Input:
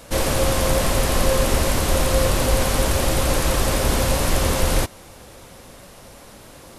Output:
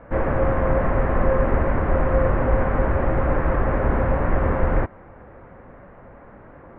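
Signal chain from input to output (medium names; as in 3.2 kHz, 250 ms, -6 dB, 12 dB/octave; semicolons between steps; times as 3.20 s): steep low-pass 1.9 kHz 36 dB/octave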